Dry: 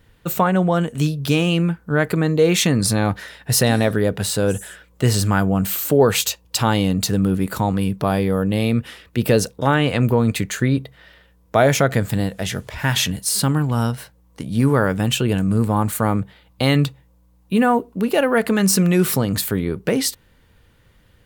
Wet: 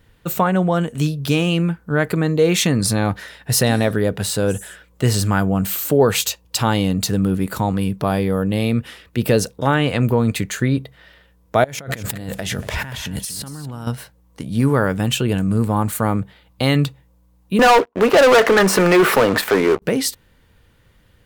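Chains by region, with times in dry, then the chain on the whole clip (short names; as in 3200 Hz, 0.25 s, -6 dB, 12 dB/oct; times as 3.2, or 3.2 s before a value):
11.64–13.87 negative-ratio compressor -29 dBFS + echo 0.235 s -13 dB
17.59–19.82 three-band isolator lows -24 dB, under 370 Hz, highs -22 dB, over 2400 Hz + sample leveller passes 5
whole clip: dry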